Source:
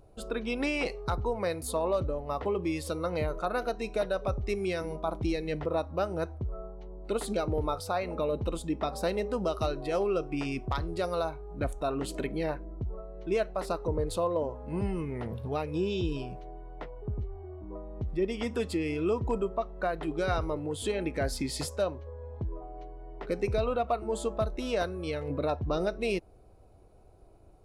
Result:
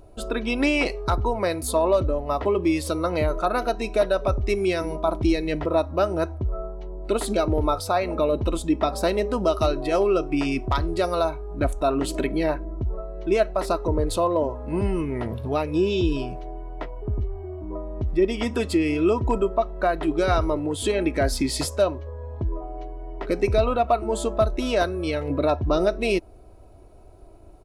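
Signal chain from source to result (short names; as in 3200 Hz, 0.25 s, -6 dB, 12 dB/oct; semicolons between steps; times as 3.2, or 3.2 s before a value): comb 3.1 ms, depth 36%; gain +7.5 dB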